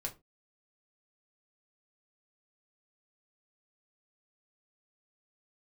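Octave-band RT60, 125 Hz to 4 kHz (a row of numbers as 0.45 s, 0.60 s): 0.30 s, 0.30 s, 0.30 s, 0.20 s, 0.20 s, 0.15 s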